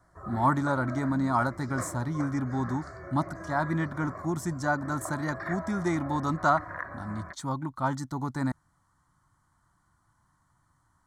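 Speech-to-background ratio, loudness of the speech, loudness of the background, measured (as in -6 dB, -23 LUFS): 11.0 dB, -30.0 LUFS, -41.0 LUFS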